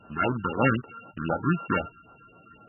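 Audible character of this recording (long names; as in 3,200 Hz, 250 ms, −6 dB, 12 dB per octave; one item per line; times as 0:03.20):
a buzz of ramps at a fixed pitch in blocks of 32 samples
phaser sweep stages 6, 3.9 Hz, lowest notch 620–3,900 Hz
a quantiser's noise floor 12 bits, dither triangular
MP3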